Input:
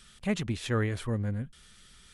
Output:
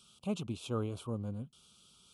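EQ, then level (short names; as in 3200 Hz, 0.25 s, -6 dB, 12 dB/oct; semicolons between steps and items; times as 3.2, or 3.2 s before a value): HPF 110 Hz 12 dB/oct; Chebyshev band-stop 1200–2800 Hz, order 2; dynamic EQ 4900 Hz, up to -4 dB, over -56 dBFS, Q 0.98; -4.5 dB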